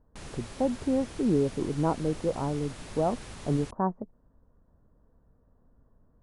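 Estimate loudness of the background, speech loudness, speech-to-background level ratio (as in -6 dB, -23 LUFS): -44.0 LUFS, -30.0 LUFS, 14.0 dB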